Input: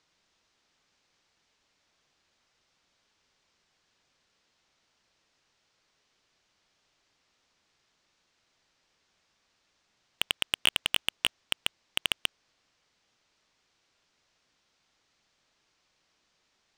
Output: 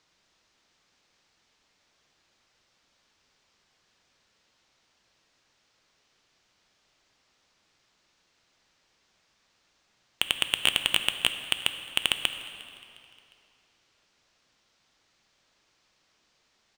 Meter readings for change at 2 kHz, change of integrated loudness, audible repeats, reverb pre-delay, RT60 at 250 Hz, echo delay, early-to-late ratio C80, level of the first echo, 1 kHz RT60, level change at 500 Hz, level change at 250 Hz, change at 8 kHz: +3.5 dB, +3.0 dB, 2, 5 ms, 2.7 s, 356 ms, 10.0 dB, -22.5 dB, 2.6 s, +3.5 dB, +4.0 dB, +3.5 dB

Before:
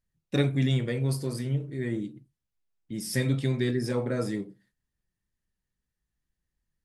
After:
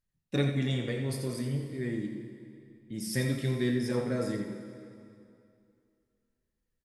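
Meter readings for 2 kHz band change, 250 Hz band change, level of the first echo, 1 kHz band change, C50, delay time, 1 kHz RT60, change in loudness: -2.0 dB, -2.0 dB, -9.0 dB, -2.0 dB, 4.5 dB, 86 ms, 2.6 s, -3.5 dB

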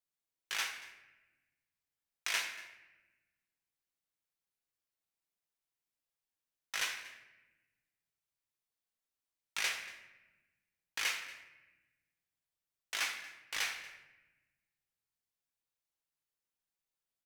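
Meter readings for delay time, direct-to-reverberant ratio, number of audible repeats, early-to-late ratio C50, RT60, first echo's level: 234 ms, 2.5 dB, 1, 8.0 dB, 1.1 s, -19.0 dB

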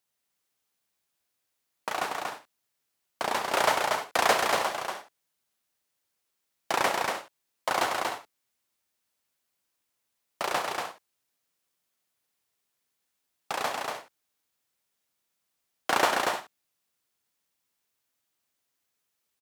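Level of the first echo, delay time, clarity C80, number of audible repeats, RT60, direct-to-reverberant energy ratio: -14.5 dB, 92 ms, no reverb, 4, no reverb, no reverb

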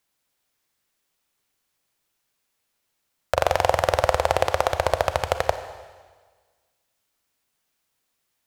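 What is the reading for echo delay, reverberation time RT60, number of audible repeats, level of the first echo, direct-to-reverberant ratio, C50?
no echo, 1.5 s, no echo, no echo, 9.5 dB, 10.5 dB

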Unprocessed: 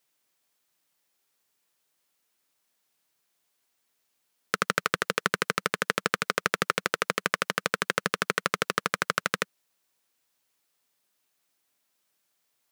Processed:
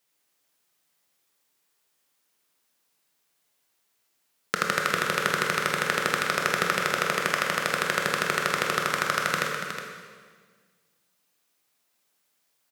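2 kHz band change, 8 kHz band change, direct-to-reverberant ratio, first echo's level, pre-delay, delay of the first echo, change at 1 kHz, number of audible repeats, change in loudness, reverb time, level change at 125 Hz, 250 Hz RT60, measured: +3.0 dB, +2.5 dB, -0.5 dB, -9.5 dB, 19 ms, 365 ms, +3.5 dB, 1, +3.0 dB, 1.6 s, +3.5 dB, 1.9 s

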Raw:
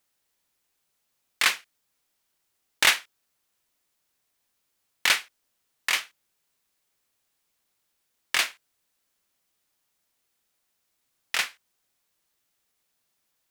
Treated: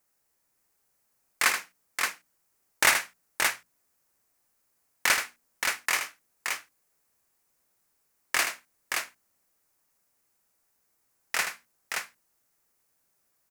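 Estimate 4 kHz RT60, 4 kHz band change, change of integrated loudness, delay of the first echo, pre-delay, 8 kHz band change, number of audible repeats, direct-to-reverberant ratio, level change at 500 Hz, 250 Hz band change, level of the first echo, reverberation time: no reverb, -4.5 dB, -3.0 dB, 79 ms, no reverb, +2.0 dB, 2, no reverb, +3.5 dB, +3.0 dB, -8.0 dB, no reverb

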